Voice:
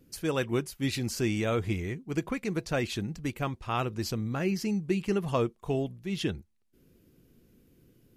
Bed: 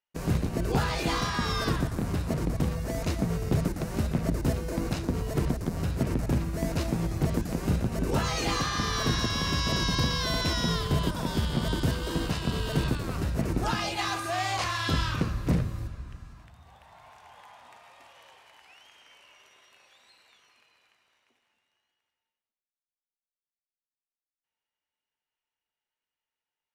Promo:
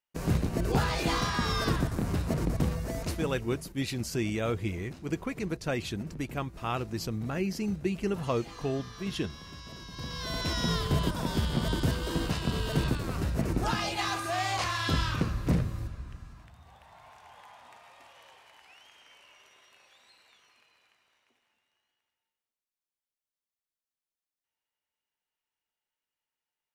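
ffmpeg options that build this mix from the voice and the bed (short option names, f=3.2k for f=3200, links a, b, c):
-filter_complex "[0:a]adelay=2950,volume=-2dB[a];[1:a]volume=16.5dB,afade=t=out:st=2.67:d=0.92:silence=0.133352,afade=t=in:st=9.92:d=0.81:silence=0.141254[b];[a][b]amix=inputs=2:normalize=0"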